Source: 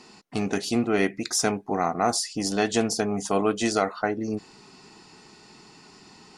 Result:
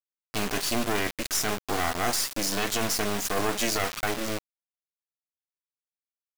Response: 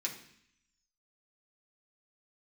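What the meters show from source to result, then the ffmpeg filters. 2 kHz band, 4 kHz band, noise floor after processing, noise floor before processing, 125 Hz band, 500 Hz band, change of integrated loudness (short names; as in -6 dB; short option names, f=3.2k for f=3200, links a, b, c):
+1.5 dB, +2.0 dB, under -85 dBFS, -52 dBFS, -3.0 dB, -5.5 dB, -2.0 dB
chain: -af "acrusher=bits=3:dc=4:mix=0:aa=0.000001,aeval=exprs='max(val(0),0)':c=same,tiltshelf=f=930:g=-3.5,alimiter=limit=-18dB:level=0:latency=1:release=11,volume=4dB"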